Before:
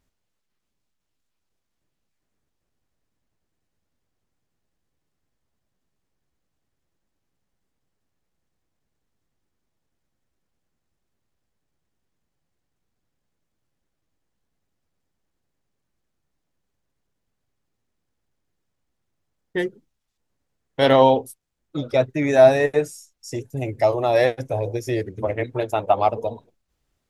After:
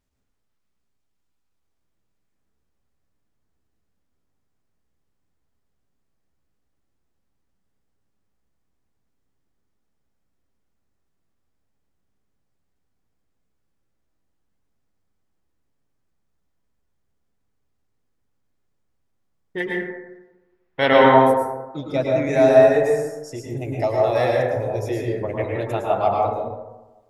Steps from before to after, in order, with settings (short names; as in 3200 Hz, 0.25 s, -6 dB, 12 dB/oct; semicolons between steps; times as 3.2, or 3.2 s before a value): 19.6–21.06 graphic EQ 1000/2000/8000 Hz +4/+10/-9 dB; plate-style reverb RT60 1.1 s, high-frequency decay 0.35×, pre-delay 95 ms, DRR -2.5 dB; gain -4.5 dB